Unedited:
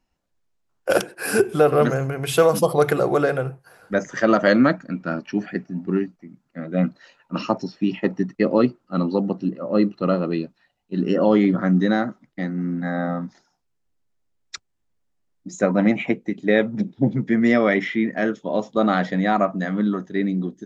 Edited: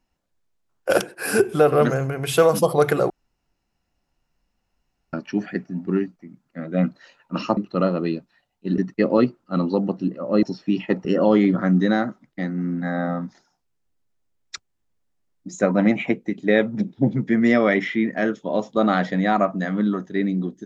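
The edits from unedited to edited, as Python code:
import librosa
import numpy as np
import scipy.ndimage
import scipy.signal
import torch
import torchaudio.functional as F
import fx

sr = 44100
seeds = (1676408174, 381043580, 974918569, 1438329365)

y = fx.edit(x, sr, fx.room_tone_fill(start_s=3.1, length_s=2.03),
    fx.swap(start_s=7.57, length_s=0.62, other_s=9.84, other_length_s=1.21), tone=tone)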